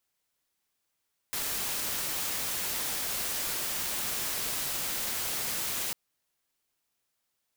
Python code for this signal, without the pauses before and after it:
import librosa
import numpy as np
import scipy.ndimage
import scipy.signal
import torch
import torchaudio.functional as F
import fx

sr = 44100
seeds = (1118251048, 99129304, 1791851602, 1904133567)

y = fx.noise_colour(sr, seeds[0], length_s=4.6, colour='white', level_db=-32.5)